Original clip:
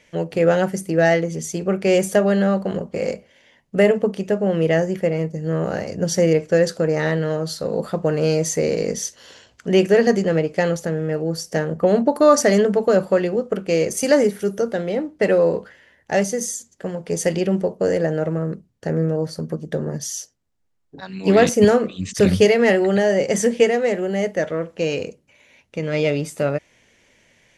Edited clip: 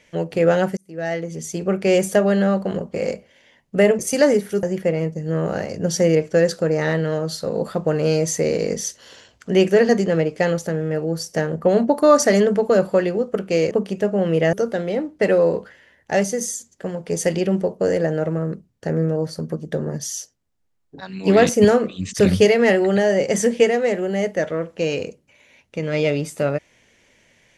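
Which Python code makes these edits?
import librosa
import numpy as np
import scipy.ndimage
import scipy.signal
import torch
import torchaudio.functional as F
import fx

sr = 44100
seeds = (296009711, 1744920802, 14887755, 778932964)

y = fx.edit(x, sr, fx.fade_in_span(start_s=0.77, length_s=0.88),
    fx.swap(start_s=3.99, length_s=0.82, other_s=13.89, other_length_s=0.64), tone=tone)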